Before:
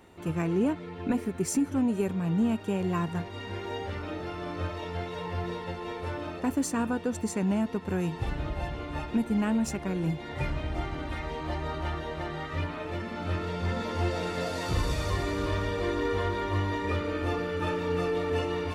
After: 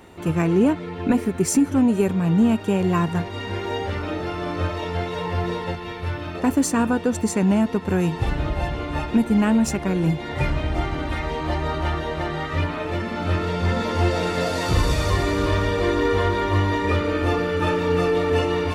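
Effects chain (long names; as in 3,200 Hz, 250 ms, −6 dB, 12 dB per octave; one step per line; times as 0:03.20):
0:05.75–0:06.35: octave-band graphic EQ 125/250/500/1,000/8,000 Hz +4/−4/−7/−4/−6 dB
level +8.5 dB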